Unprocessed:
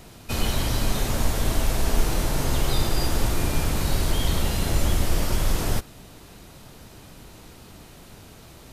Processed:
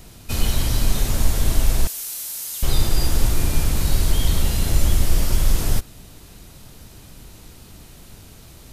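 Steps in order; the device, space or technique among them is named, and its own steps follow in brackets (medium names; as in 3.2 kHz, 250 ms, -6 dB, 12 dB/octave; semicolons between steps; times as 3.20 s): smiley-face EQ (bass shelf 89 Hz +7 dB; peaking EQ 810 Hz -3 dB 2.5 oct; treble shelf 5.2 kHz +5.5 dB); 1.87–2.63 s: differentiator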